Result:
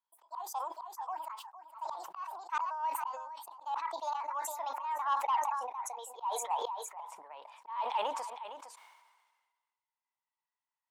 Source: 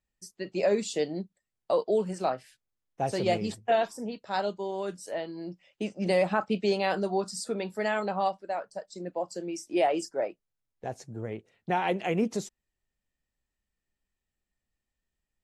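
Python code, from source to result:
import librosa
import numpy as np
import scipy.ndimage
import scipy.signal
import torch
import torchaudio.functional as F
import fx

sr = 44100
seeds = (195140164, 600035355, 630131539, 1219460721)

p1 = fx.speed_glide(x, sr, from_pct=179, to_pct=104)
p2 = fx.ladder_highpass(p1, sr, hz=900.0, resonance_pct=80)
p3 = fx.high_shelf(p2, sr, hz=5300.0, db=-11.5)
p4 = fx.auto_swell(p3, sr, attack_ms=458.0)
p5 = p4 + fx.echo_single(p4, sr, ms=459, db=-13.5, dry=0)
p6 = 10.0 ** (-28.5 / 20.0) * np.tanh(p5 / 10.0 ** (-28.5 / 20.0))
p7 = fx.sustainer(p6, sr, db_per_s=39.0)
y = F.gain(torch.from_numpy(p7), 5.0).numpy()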